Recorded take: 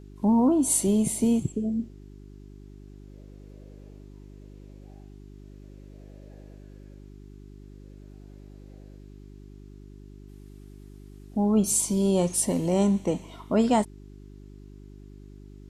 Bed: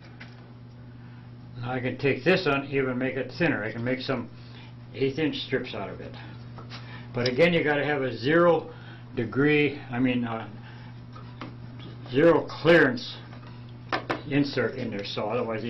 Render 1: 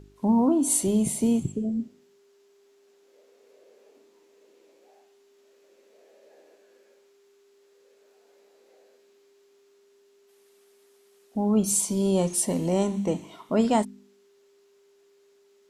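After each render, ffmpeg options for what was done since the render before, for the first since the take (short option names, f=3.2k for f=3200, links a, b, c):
-af "bandreject=f=50:t=h:w=4,bandreject=f=100:t=h:w=4,bandreject=f=150:t=h:w=4,bandreject=f=200:t=h:w=4,bandreject=f=250:t=h:w=4,bandreject=f=300:t=h:w=4,bandreject=f=350:t=h:w=4"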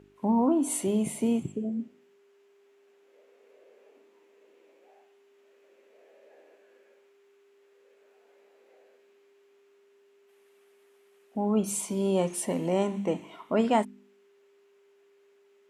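-af "highpass=f=270:p=1,highshelf=f=3.4k:t=q:w=1.5:g=-7.5"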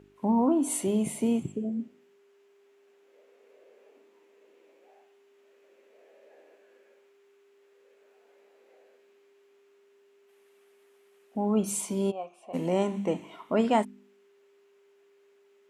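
-filter_complex "[0:a]asplit=3[a][b][c];[a]afade=t=out:st=12.1:d=0.02[d];[b]asplit=3[e][f][g];[e]bandpass=f=730:t=q:w=8,volume=0dB[h];[f]bandpass=f=1.09k:t=q:w=8,volume=-6dB[i];[g]bandpass=f=2.44k:t=q:w=8,volume=-9dB[j];[h][i][j]amix=inputs=3:normalize=0,afade=t=in:st=12.1:d=0.02,afade=t=out:st=12.53:d=0.02[k];[c]afade=t=in:st=12.53:d=0.02[l];[d][k][l]amix=inputs=3:normalize=0"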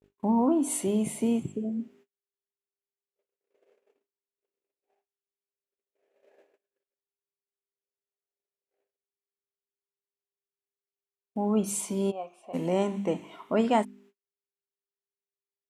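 -af "agate=range=-42dB:threshold=-55dB:ratio=16:detection=peak"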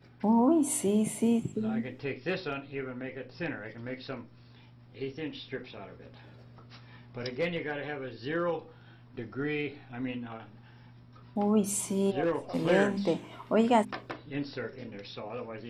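-filter_complex "[1:a]volume=-11dB[a];[0:a][a]amix=inputs=2:normalize=0"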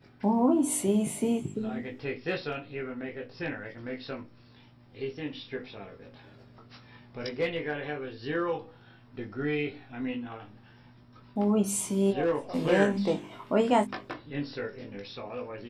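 -filter_complex "[0:a]asplit=2[a][b];[b]adelay=20,volume=-5.5dB[c];[a][c]amix=inputs=2:normalize=0"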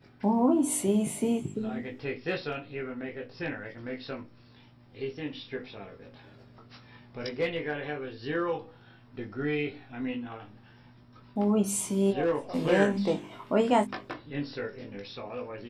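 -af anull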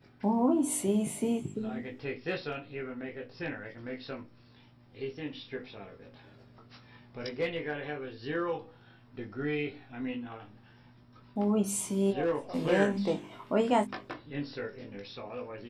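-af "volume=-2.5dB"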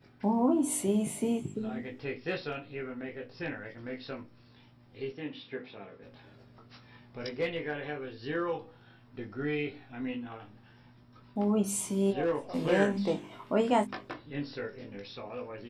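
-filter_complex "[0:a]asettb=1/sr,asplit=3[a][b][c];[a]atrim=end=5.124[d];[b]atrim=start=5.12:end=6.03,asetpts=PTS-STARTPTS,afade=t=in:d=0.004:c=qsin,afade=t=out:st=0.906:d=0.004:c=qsin,highpass=130,lowpass=4k[e];[c]atrim=start=6.026[f];[d][e]acrossfade=d=0.004:c1=hsin:c2=qsin[g];[g][f]acrossfade=d=0.004:c1=qsin:c2=hsin"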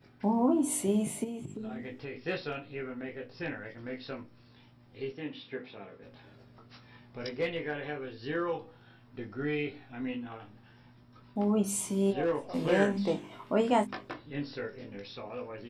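-filter_complex "[0:a]asplit=3[a][b][c];[a]afade=t=out:st=1.23:d=0.02[d];[b]acompressor=threshold=-35dB:ratio=6:attack=3.2:release=140:knee=1:detection=peak,afade=t=in:st=1.23:d=0.02,afade=t=out:st=2.14:d=0.02[e];[c]afade=t=in:st=2.14:d=0.02[f];[d][e][f]amix=inputs=3:normalize=0"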